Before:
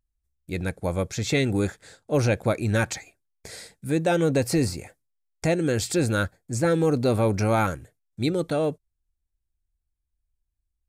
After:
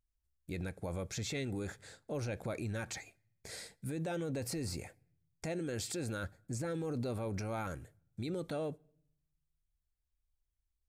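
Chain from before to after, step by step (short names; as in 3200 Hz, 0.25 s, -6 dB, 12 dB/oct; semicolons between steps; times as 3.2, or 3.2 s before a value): 5.45–6.24 HPF 92 Hz 6 dB/oct; limiter -25 dBFS, peak gain reduction 12 dB; on a send: reverb RT60 0.70 s, pre-delay 5 ms, DRR 24 dB; on the sum: gain -5.5 dB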